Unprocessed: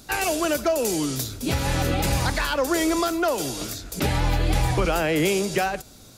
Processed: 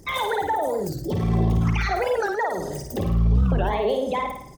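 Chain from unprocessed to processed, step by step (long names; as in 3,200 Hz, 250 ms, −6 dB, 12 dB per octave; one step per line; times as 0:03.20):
spectral envelope exaggerated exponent 2
dynamic equaliser 6,800 Hz, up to −6 dB, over −51 dBFS, Q 0.91
in parallel at −1 dB: downward compressor, threshold −29 dBFS, peak gain reduction 11 dB
on the sum: bit reduction 11 bits
on a send: repeating echo 72 ms, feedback 56%, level −4.5 dB
on the sum: wrong playback speed 33 rpm record played at 45 rpm
wow of a warped record 45 rpm, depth 250 cents
level −5 dB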